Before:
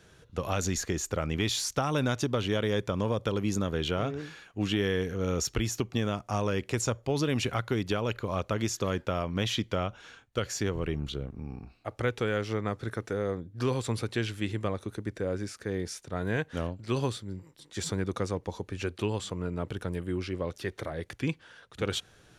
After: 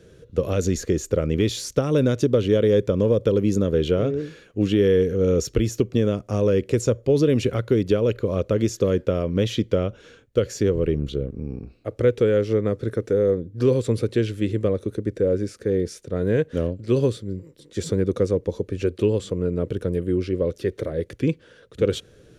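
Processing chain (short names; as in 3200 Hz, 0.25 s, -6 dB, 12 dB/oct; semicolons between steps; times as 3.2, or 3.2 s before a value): resonant low shelf 630 Hz +7.5 dB, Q 3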